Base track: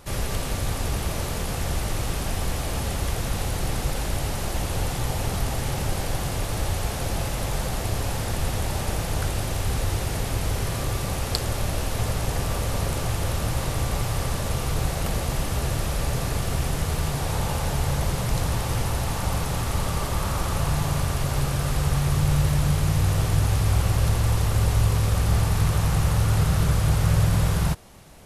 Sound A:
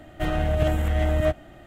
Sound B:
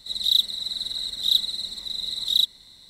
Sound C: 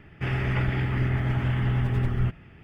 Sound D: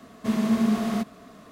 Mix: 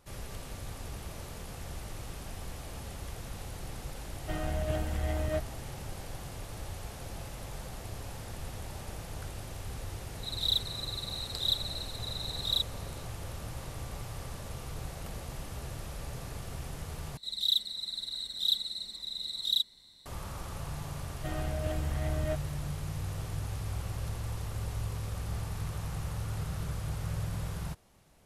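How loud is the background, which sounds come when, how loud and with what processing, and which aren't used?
base track -15 dB
4.08 add A -10 dB
10.17 add B -9.5 dB
17.17 replace with B -8 dB
21.04 add A -12 dB
not used: C, D

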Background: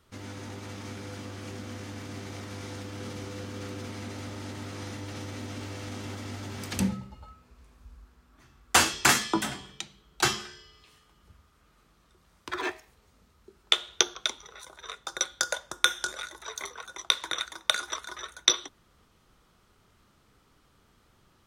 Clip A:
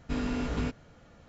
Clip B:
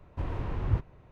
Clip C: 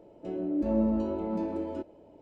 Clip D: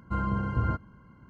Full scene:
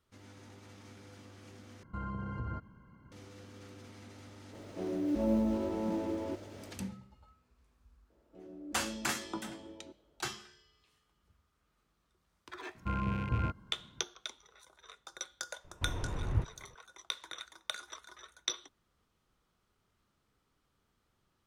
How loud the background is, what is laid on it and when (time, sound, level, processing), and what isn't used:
background -13.5 dB
1.83 replace with D -4.5 dB + compressor 3:1, threshold -32 dBFS
4.53 add C -4 dB + G.711 law mismatch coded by mu
8.1 add C -17 dB
12.75 add D -5 dB + rattling part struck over -31 dBFS, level -31 dBFS
15.64 add B -4 dB
not used: A

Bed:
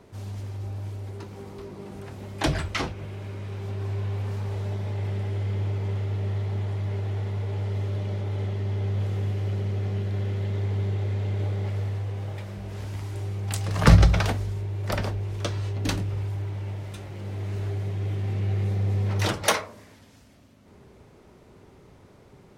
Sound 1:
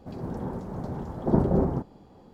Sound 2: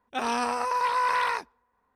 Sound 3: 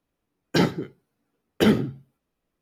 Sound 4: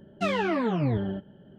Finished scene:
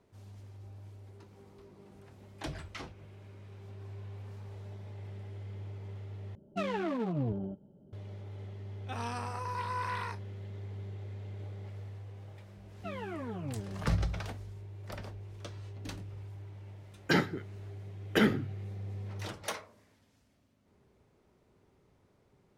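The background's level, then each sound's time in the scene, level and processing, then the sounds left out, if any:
bed -15.5 dB
6.35 replace with 4 -6.5 dB + Wiener smoothing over 25 samples
8.74 add 2 -12 dB + doubler 34 ms -11.5 dB
12.63 add 4 -13.5 dB + air absorption 190 m
16.55 add 3 -8 dB + bell 1700 Hz +8 dB 1.1 oct
not used: 1

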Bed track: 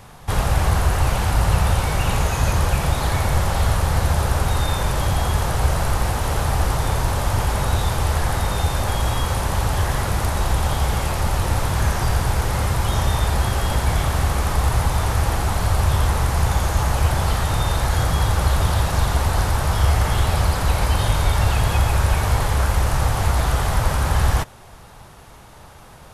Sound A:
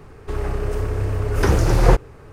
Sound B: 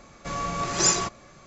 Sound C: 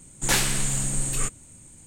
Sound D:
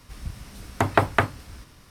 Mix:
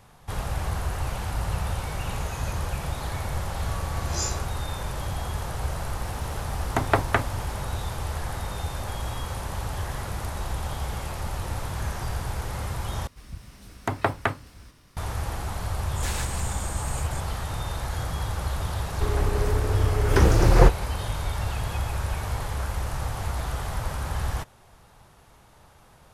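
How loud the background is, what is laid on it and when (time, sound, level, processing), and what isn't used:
bed track -10.5 dB
3.36 add B -14.5 dB + spectral dilation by 60 ms
5.96 add D -2.5 dB
13.07 replace with D -5 dB
15.74 add C -12.5 dB + reverse delay 0.133 s, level -2 dB
18.73 add A -1.5 dB

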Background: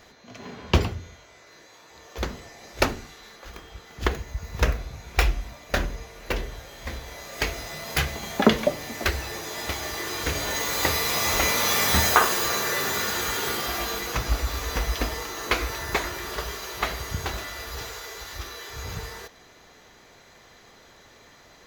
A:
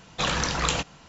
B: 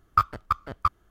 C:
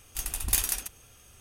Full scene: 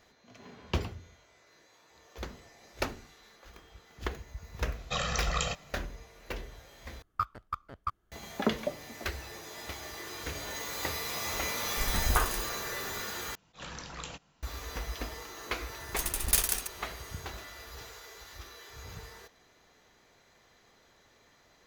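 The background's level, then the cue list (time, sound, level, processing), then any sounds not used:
background -11 dB
4.72 add A -9.5 dB + comb 1.6 ms, depth 92%
7.02 replace with B -10.5 dB
11.62 add C -3.5 dB + tilt shelf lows +8.5 dB
13.35 replace with A -17 dB + attack slew limiter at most 260 dB/s
15.8 add C -1 dB + block floating point 3-bit

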